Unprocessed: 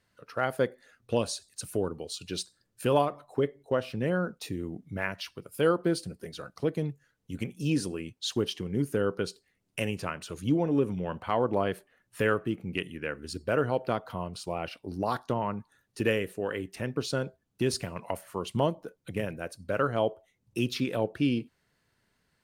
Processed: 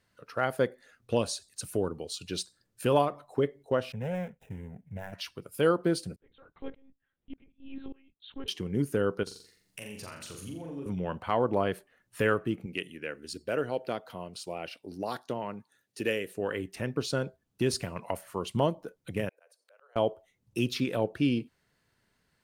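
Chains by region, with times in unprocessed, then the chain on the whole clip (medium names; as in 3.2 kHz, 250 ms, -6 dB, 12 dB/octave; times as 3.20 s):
3.92–5.13 s: median filter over 41 samples + static phaser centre 1.2 kHz, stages 6
6.16–8.48 s: compression 2:1, threshold -31 dBFS + monotone LPC vocoder at 8 kHz 270 Hz + sawtooth tremolo in dB swelling 1.7 Hz, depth 27 dB
9.23–10.86 s: treble shelf 3.5 kHz +9 dB + compression 4:1, threshold -42 dBFS + flutter echo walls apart 7.3 m, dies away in 0.57 s
12.66–16.35 s: high-pass 340 Hz 6 dB/octave + peaking EQ 1.1 kHz -7.5 dB 1.1 oct
19.29–19.96 s: steep high-pass 460 Hz 48 dB/octave + slow attack 376 ms + compression 16:1, threshold -57 dBFS
whole clip: none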